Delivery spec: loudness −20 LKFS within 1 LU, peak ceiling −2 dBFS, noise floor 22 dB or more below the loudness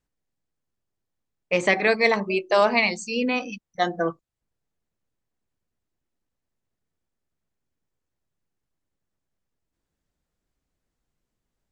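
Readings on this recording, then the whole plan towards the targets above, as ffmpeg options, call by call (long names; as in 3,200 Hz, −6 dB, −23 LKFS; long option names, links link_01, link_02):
integrated loudness −22.5 LKFS; sample peak −5.5 dBFS; target loudness −20.0 LKFS
→ -af "volume=2.5dB"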